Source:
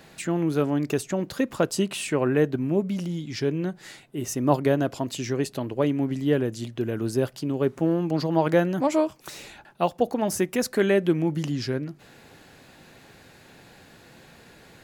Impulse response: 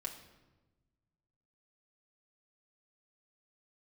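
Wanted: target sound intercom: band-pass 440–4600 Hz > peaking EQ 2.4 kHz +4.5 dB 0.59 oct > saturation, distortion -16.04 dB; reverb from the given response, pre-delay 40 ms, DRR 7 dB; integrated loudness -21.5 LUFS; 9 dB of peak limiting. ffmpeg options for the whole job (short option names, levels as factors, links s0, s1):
-filter_complex "[0:a]alimiter=limit=0.178:level=0:latency=1,asplit=2[s0][s1];[1:a]atrim=start_sample=2205,adelay=40[s2];[s1][s2]afir=irnorm=-1:irlink=0,volume=0.501[s3];[s0][s3]amix=inputs=2:normalize=0,highpass=440,lowpass=4600,equalizer=f=2400:t=o:w=0.59:g=4.5,asoftclip=threshold=0.0794,volume=3.76"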